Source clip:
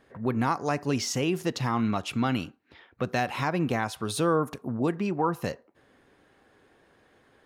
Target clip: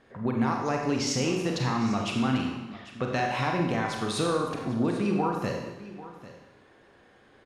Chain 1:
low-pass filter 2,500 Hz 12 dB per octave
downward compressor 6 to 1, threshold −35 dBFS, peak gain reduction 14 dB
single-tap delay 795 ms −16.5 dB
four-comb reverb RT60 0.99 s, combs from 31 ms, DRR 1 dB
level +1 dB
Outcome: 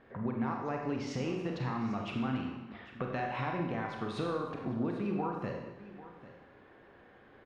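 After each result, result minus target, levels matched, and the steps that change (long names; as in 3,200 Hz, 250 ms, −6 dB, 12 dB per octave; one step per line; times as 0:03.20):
8,000 Hz band −12.5 dB; downward compressor: peak gain reduction +8 dB
change: low-pass filter 7,700 Hz 12 dB per octave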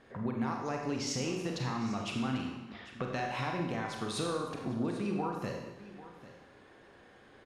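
downward compressor: peak gain reduction +8 dB
change: downward compressor 6 to 1, threshold −25.5 dBFS, peak gain reduction 6 dB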